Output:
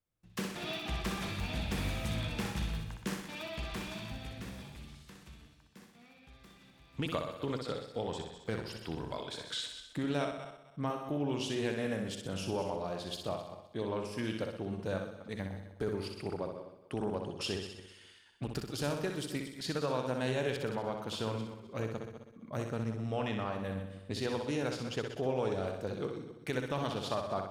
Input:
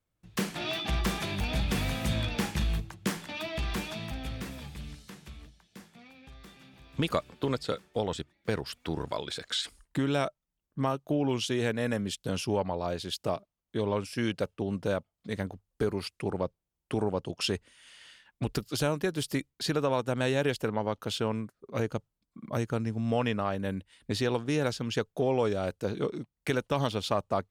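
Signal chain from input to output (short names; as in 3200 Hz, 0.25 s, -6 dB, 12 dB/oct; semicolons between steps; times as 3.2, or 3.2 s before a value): regenerating reverse delay 0.129 s, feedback 43%, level -11 dB; flutter echo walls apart 10.7 m, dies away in 0.65 s; Doppler distortion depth 0.11 ms; gain -7 dB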